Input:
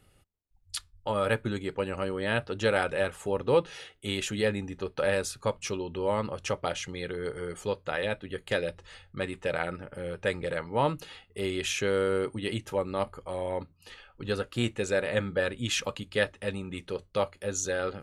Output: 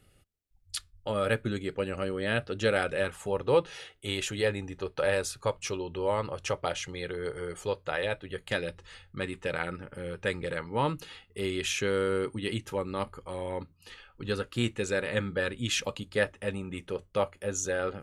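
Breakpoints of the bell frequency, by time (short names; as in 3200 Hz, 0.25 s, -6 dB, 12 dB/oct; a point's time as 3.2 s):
bell -8 dB 0.45 oct
2.97 s 930 Hz
3.39 s 220 Hz
8.26 s 220 Hz
8.68 s 660 Hz
15.62 s 660 Hz
16.29 s 4200 Hz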